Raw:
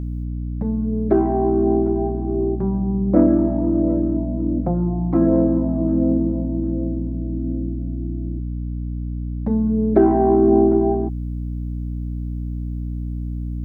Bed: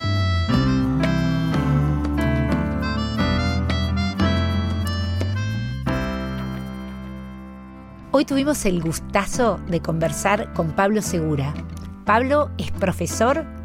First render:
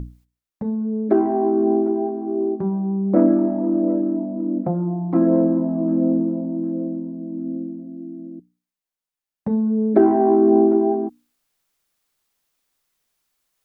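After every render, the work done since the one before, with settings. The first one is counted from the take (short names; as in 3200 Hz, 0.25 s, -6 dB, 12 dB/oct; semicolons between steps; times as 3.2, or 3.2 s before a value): notches 60/120/180/240/300 Hz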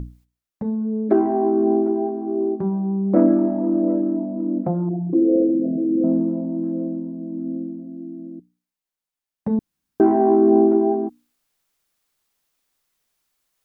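4.89–6.04 formant sharpening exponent 3; 9.59–10 room tone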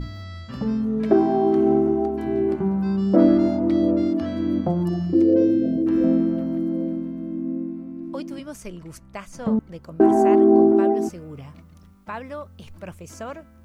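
add bed -16 dB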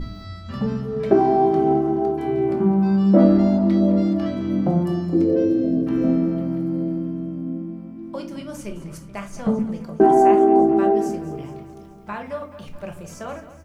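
feedback echo 0.213 s, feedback 60%, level -14.5 dB; shoebox room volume 320 m³, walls furnished, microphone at 1.2 m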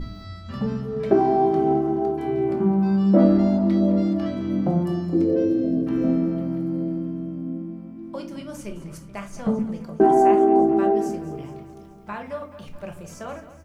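gain -2 dB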